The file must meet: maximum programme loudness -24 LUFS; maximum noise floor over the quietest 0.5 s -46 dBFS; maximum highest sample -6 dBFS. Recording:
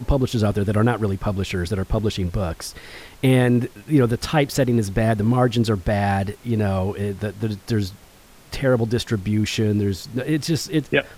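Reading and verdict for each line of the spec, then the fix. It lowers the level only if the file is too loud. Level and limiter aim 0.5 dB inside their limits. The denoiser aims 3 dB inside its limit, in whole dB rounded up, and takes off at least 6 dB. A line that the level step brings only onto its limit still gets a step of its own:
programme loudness -21.5 LUFS: fail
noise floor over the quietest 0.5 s -48 dBFS: OK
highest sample -5.0 dBFS: fail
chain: gain -3 dB

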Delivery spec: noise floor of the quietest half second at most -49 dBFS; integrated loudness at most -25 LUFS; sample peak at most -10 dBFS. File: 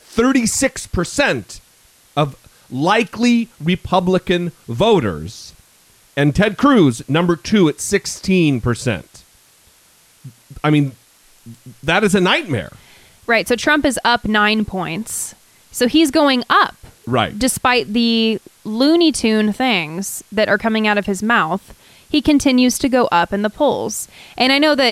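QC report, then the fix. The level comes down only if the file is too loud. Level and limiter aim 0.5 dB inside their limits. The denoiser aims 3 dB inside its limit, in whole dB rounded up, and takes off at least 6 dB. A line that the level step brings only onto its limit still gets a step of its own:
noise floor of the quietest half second -52 dBFS: OK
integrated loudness -16.5 LUFS: fail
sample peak -2.5 dBFS: fail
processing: gain -9 dB

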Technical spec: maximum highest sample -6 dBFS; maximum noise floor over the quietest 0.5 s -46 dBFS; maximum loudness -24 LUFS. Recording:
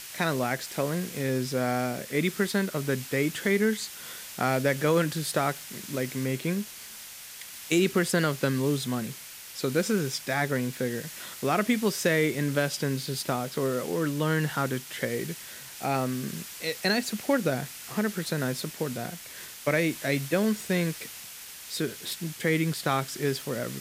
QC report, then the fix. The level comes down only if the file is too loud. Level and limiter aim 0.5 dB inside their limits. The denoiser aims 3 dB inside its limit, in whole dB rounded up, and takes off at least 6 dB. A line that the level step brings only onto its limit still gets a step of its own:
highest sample -10.5 dBFS: OK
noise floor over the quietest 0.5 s -44 dBFS: fail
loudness -28.5 LUFS: OK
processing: denoiser 6 dB, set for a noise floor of -44 dBFS

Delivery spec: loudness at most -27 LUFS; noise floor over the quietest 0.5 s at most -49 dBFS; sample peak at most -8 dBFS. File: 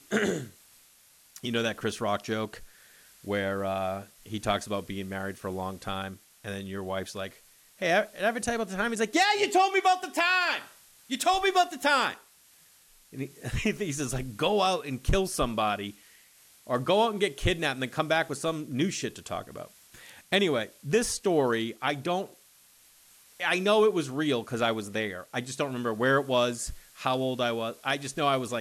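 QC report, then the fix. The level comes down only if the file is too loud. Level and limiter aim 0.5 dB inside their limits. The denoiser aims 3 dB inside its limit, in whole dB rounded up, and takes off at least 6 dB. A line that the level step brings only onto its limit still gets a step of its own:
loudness -28.5 LUFS: OK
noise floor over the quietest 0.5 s -59 dBFS: OK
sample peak -12.5 dBFS: OK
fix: none

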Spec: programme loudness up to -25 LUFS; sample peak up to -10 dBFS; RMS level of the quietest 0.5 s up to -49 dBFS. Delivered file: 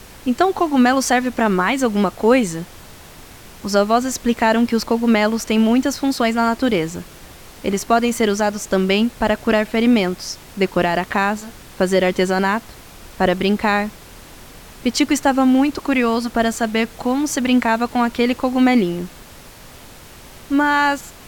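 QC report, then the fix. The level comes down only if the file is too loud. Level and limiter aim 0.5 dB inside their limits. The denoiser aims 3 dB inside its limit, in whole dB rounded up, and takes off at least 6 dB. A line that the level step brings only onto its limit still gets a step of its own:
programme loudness -18.0 LUFS: fail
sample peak -1.5 dBFS: fail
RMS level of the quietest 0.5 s -41 dBFS: fail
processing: denoiser 6 dB, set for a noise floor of -41 dBFS; gain -7.5 dB; limiter -10.5 dBFS

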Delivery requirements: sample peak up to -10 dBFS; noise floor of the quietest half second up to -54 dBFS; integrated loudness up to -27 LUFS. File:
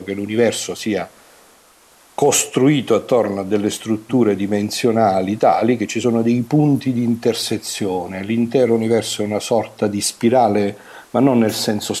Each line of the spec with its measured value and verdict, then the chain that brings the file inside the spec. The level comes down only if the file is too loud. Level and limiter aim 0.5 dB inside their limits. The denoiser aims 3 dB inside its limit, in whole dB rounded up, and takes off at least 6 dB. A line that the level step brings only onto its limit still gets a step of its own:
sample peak -4.0 dBFS: fail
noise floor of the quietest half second -50 dBFS: fail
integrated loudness -17.5 LUFS: fail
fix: gain -10 dB

